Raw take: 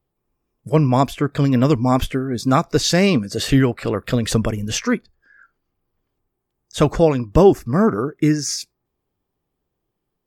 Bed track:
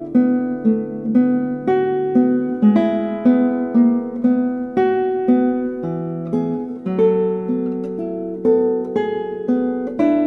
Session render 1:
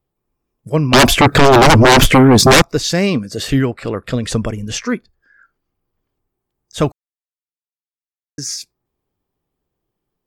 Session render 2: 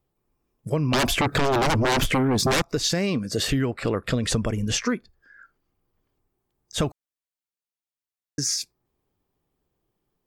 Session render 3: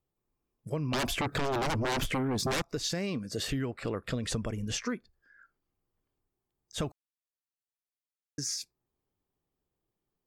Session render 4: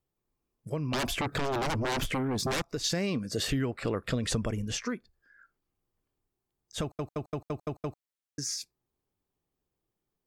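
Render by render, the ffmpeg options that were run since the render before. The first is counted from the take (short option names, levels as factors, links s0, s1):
-filter_complex "[0:a]asettb=1/sr,asplit=3[s0][s1][s2];[s0]atrim=end=0.934[s3];[s1]atrim=start=0.93:end=2.62,asetpts=PTS-STARTPTS,afade=t=in:d=0.004:c=qsin,afade=t=out:st=1.686:d=0.004:c=qsin,aeval=exprs='0.631*sin(PI/2*6.31*val(0)/0.631)':c=same[s4];[s2]atrim=start=2.616[s5];[s3][s4]acrossfade=d=0.004:c1=hsin:c2=qsin[s6];[s6][s5]acrossfade=d=0.004:c1=qsin:c2=hsin,asettb=1/sr,asplit=3[s7][s8][s9];[s7]atrim=end=3.654[s10];[s8]atrim=start=3.65:end=4.88,asetpts=PTS-STARTPTS,afade=t=in:d=0.004:c=qsin,afade=t=out:st=1.226:d=0.004:c=qsin,lowpass=f=11000:w=0.5412,lowpass=f=11000:w=1.3066[s11];[s9]atrim=start=4.876[s12];[s10][s11]acrossfade=d=0.004:c1=hsin:c2=qsin[s13];[s13][s12]acrossfade=d=0.004:c1=qsin:c2=hsin,asplit=3[s14][s15][s16];[s14]atrim=end=6.92,asetpts=PTS-STARTPTS,afade=t=out:st=6.916:d=0.004:c=hsin[s17];[s15]atrim=start=6.92:end=8.38,asetpts=PTS-STARTPTS,volume=0[s18];[s16]atrim=start=8.38,asetpts=PTS-STARTPTS,afade=t=in:d=0.004:c=hsin[s19];[s17][s18][s19]concat=n=3:v=0:a=1"
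-af "alimiter=limit=0.335:level=0:latency=1:release=111,acompressor=threshold=0.1:ratio=6"
-af "volume=0.355"
-filter_complex "[0:a]asplit=10[s0][s1][s2][s3][s4][s5][s6][s7][s8][s9];[s0]atrim=end=2.842[s10];[s1]atrim=start=2.838:end=4.622,asetpts=PTS-STARTPTS,volume=1.41[s11];[s2]atrim=start=4.618:end=6.992[s12];[s3]atrim=start=6.818:end=6.992[s13];[s4]atrim=start=6.818:end=6.992[s14];[s5]atrim=start=6.818:end=6.992[s15];[s6]atrim=start=6.818:end=6.992[s16];[s7]atrim=start=6.818:end=6.992[s17];[s8]atrim=start=6.818:end=6.992[s18];[s9]atrim=start=8.008[s19];[s10][s11]acrossfade=d=0.004:c1=hsin:c2=hsin[s20];[s20][s12]acrossfade=d=0.004:c1=hsin:c2=hsin[s21];[s21][s13]acrossfade=d=0.004:c1=hsin:c2=hsin[s22];[s22][s14]acrossfade=d=0.004:c1=hsin:c2=hsin[s23];[s23][s15]acrossfade=d=0.004:c1=hsin:c2=hsin[s24];[s24][s16]acrossfade=d=0.004:c1=hsin:c2=hsin[s25];[s25][s17]acrossfade=d=0.004:c1=hsin:c2=hsin[s26];[s26][s18]acrossfade=d=0.004:c1=hsin:c2=hsin[s27];[s27][s19]acrossfade=d=0.004:c1=hsin:c2=hsin"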